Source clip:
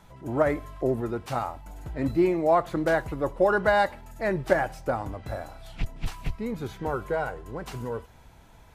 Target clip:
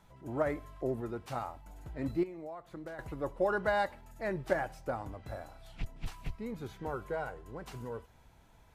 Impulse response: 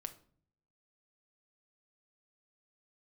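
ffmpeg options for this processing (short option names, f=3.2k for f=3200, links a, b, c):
-filter_complex "[0:a]asettb=1/sr,asplit=3[a][b][c];[a]atrim=end=2.234[d];[b]atrim=start=2.23:end=2.99,asetpts=PTS-STARTPTS,afade=t=in:d=0.004:c=qsin,afade=t=out:st=0.756:d=0.004:c=qsin,acompressor=threshold=-32dB:ratio=20[e];[c]atrim=start=2.986[f];[d][e]acrossfade=d=0.004:c1=hsin:c2=qsin[g];[g][f]acrossfade=d=0.004:c1=qsin:c2=hsin,volume=-8.5dB"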